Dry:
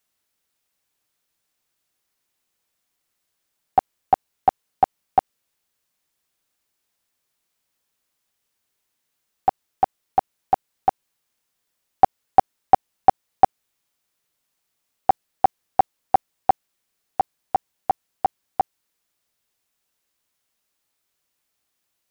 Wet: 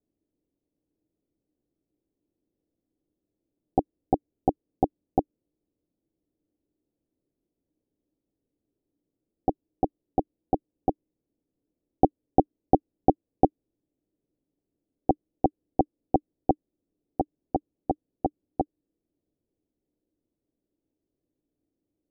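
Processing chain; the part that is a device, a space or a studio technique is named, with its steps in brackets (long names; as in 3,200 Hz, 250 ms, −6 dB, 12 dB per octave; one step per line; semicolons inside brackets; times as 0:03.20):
under water (low-pass filter 490 Hz 24 dB per octave; parametric band 300 Hz +11.5 dB 0.39 octaves)
level +5.5 dB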